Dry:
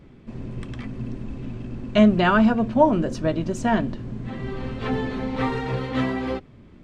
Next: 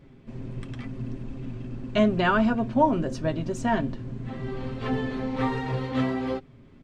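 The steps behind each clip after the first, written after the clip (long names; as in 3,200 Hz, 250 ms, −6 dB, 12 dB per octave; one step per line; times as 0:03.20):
comb filter 7.5 ms, depth 41%
level −4 dB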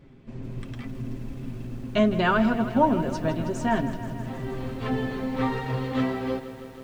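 feedback echo at a low word length 160 ms, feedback 80%, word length 8 bits, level −13.5 dB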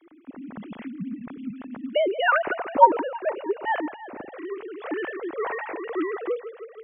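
three sine waves on the formant tracks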